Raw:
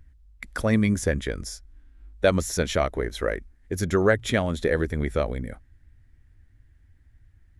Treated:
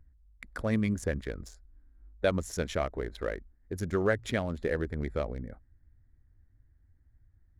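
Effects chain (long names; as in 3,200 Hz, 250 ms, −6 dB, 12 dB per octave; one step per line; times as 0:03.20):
adaptive Wiener filter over 15 samples
level −7 dB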